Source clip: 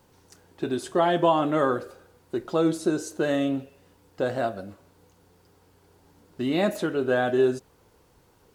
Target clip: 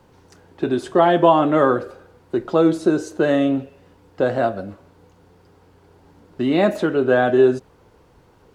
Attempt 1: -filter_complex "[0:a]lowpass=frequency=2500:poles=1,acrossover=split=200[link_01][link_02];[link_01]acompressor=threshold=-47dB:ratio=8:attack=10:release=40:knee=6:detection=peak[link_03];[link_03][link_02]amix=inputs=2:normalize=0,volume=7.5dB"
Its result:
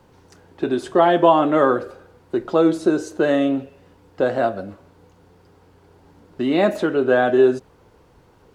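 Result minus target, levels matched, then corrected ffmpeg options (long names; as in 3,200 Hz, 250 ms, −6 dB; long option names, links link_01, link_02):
downward compressor: peak gain reduction +8.5 dB
-filter_complex "[0:a]lowpass=frequency=2500:poles=1,acrossover=split=200[link_01][link_02];[link_01]acompressor=threshold=-37dB:ratio=8:attack=10:release=40:knee=6:detection=peak[link_03];[link_03][link_02]amix=inputs=2:normalize=0,volume=7.5dB"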